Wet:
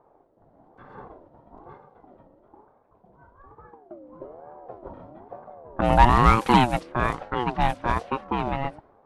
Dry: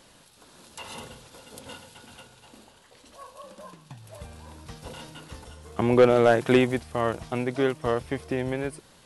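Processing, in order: level-controlled noise filter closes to 310 Hz, open at -19.5 dBFS; ring modulator with a swept carrier 540 Hz, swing 25%, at 1.1 Hz; trim +5 dB

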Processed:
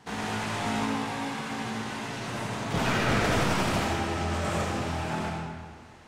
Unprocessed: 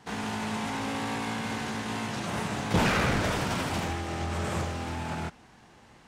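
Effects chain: 0.85–3.09 s: flange 1.6 Hz, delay 6.9 ms, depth 2 ms, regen +44%; algorithmic reverb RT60 1.6 s, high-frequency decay 0.8×, pre-delay 30 ms, DRR -0.5 dB

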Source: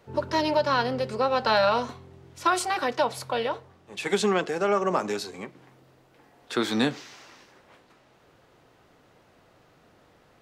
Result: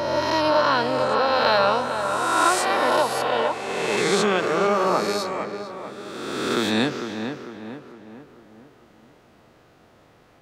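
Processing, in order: reverse spectral sustain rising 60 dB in 1.82 s; on a send: filtered feedback delay 449 ms, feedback 48%, low-pass 2 kHz, level -7 dB

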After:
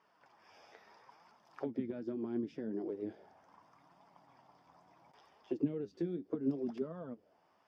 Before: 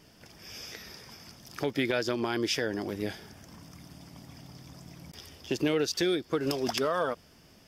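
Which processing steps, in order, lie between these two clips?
auto-wah 200–1100 Hz, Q 2.7, down, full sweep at -24.5 dBFS; flange 0.74 Hz, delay 4.3 ms, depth 8 ms, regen +48%; trim +3 dB

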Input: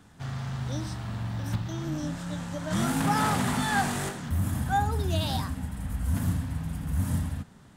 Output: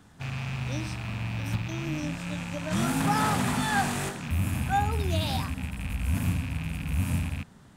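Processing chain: rattle on loud lows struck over -36 dBFS, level -29 dBFS

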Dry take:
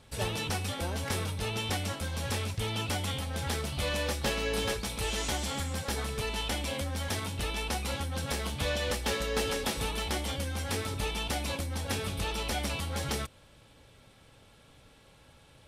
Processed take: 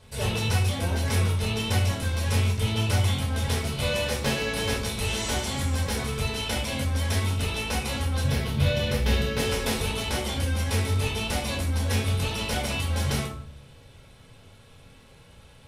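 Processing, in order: 8.24–9.39 s: graphic EQ 125/1000/8000 Hz +9/-4/-8 dB; reverberation RT60 0.50 s, pre-delay 5 ms, DRR -1.5 dB

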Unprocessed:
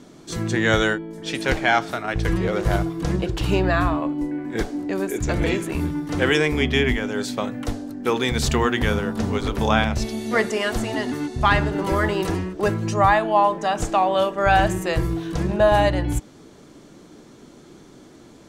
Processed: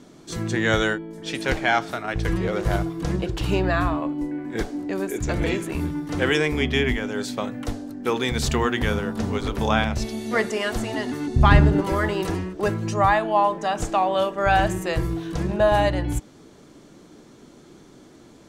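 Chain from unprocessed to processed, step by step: 11.27–11.81 s: bass shelf 330 Hz +12 dB; trim -2 dB

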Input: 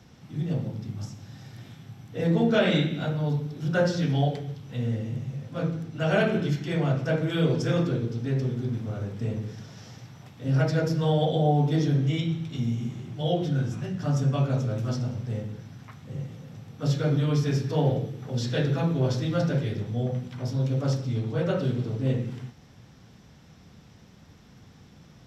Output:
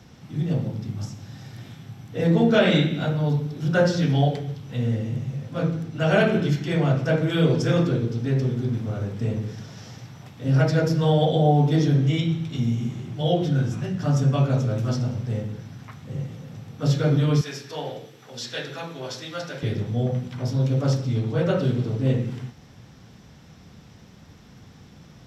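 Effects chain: 17.41–19.63 s: high-pass 1.4 kHz 6 dB/octave; trim +4 dB

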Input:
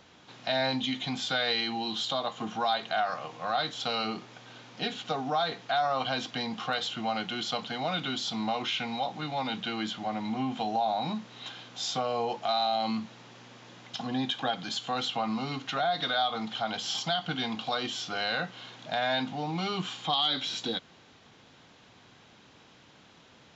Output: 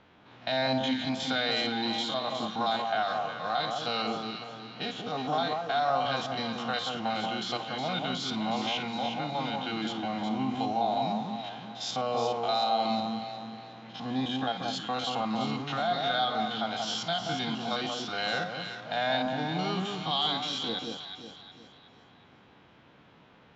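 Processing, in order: spectrogram pixelated in time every 50 ms; level-controlled noise filter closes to 2.4 kHz, open at -28 dBFS; echo whose repeats swap between lows and highs 182 ms, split 1.3 kHz, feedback 62%, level -3 dB

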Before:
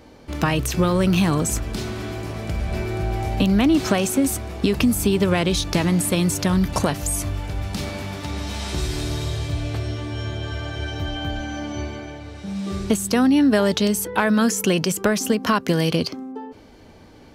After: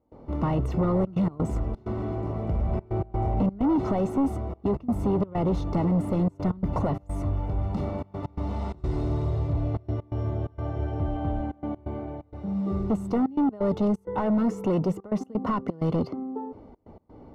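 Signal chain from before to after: trance gate ".xxxxxxxx.x.xxx" 129 bpm -24 dB; overload inside the chain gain 20 dB; Savitzky-Golay filter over 65 samples

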